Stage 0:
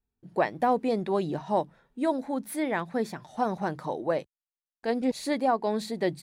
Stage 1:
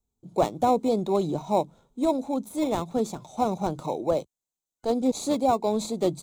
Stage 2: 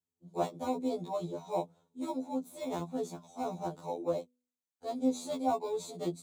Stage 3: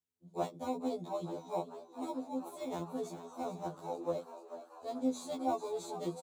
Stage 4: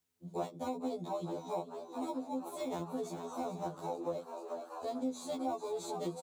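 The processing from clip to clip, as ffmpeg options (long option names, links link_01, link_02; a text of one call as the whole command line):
ffmpeg -i in.wav -filter_complex "[0:a]deesser=0.8,acrossover=split=310|1400|3900[link_01][link_02][link_03][link_04];[link_03]acrusher=samples=28:mix=1:aa=0.000001[link_05];[link_01][link_02][link_05][link_04]amix=inputs=4:normalize=0,superequalizer=11b=0.316:13b=2:15b=2.51,volume=3dB" out.wav
ffmpeg -i in.wav -af "highpass=120,bandreject=frequency=247.2:width_type=h:width=4,bandreject=frequency=494.4:width_type=h:width=4,bandreject=frequency=741.6:width_type=h:width=4,bandreject=frequency=988.8:width_type=h:width=4,afftfilt=real='re*2*eq(mod(b,4),0)':imag='im*2*eq(mod(b,4),0)':win_size=2048:overlap=0.75,volume=-7dB" out.wav
ffmpeg -i in.wav -filter_complex "[0:a]asplit=9[link_01][link_02][link_03][link_04][link_05][link_06][link_07][link_08][link_09];[link_02]adelay=439,afreqshift=80,volume=-12dB[link_10];[link_03]adelay=878,afreqshift=160,volume=-15.7dB[link_11];[link_04]adelay=1317,afreqshift=240,volume=-19.5dB[link_12];[link_05]adelay=1756,afreqshift=320,volume=-23.2dB[link_13];[link_06]adelay=2195,afreqshift=400,volume=-27dB[link_14];[link_07]adelay=2634,afreqshift=480,volume=-30.7dB[link_15];[link_08]adelay=3073,afreqshift=560,volume=-34.5dB[link_16];[link_09]adelay=3512,afreqshift=640,volume=-38.2dB[link_17];[link_01][link_10][link_11][link_12][link_13][link_14][link_15][link_16][link_17]amix=inputs=9:normalize=0,volume=-3.5dB" out.wav
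ffmpeg -i in.wav -af "acompressor=threshold=-49dB:ratio=2.5,volume=9.5dB" out.wav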